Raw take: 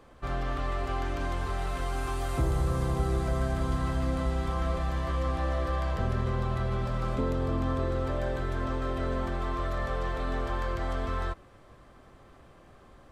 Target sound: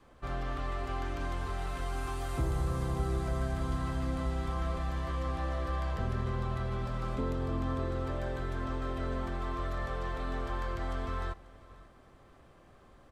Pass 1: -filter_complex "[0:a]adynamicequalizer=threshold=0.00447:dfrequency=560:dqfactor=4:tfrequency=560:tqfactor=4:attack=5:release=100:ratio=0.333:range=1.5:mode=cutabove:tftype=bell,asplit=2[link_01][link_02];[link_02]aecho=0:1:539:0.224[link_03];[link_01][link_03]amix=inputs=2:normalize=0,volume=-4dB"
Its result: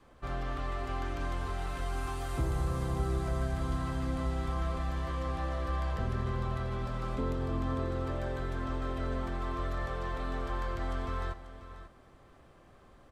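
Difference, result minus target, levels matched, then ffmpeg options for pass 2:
echo-to-direct +7.5 dB
-filter_complex "[0:a]adynamicequalizer=threshold=0.00447:dfrequency=560:dqfactor=4:tfrequency=560:tqfactor=4:attack=5:release=100:ratio=0.333:range=1.5:mode=cutabove:tftype=bell,asplit=2[link_01][link_02];[link_02]aecho=0:1:539:0.0944[link_03];[link_01][link_03]amix=inputs=2:normalize=0,volume=-4dB"

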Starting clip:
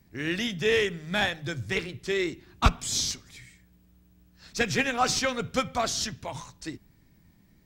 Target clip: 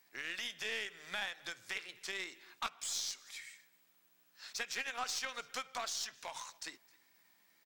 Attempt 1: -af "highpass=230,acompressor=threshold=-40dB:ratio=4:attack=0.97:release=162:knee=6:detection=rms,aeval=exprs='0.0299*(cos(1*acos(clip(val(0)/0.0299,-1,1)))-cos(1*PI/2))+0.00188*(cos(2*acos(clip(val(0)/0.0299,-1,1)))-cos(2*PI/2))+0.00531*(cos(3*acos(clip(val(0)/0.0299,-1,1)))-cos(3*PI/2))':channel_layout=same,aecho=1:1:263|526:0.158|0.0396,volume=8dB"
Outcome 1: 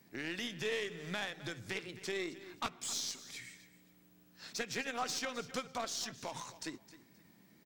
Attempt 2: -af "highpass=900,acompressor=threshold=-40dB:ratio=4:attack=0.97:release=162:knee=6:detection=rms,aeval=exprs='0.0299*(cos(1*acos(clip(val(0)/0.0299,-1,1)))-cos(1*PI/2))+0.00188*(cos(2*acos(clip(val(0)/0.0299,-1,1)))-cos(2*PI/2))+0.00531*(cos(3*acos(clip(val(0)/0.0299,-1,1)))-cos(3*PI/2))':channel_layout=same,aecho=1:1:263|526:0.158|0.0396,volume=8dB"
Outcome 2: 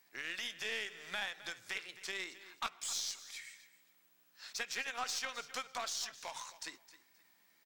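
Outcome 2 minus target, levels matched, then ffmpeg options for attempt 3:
echo-to-direct +9 dB
-af "highpass=900,acompressor=threshold=-40dB:ratio=4:attack=0.97:release=162:knee=6:detection=rms,aeval=exprs='0.0299*(cos(1*acos(clip(val(0)/0.0299,-1,1)))-cos(1*PI/2))+0.00188*(cos(2*acos(clip(val(0)/0.0299,-1,1)))-cos(2*PI/2))+0.00531*(cos(3*acos(clip(val(0)/0.0299,-1,1)))-cos(3*PI/2))':channel_layout=same,aecho=1:1:263|526:0.0562|0.0141,volume=8dB"

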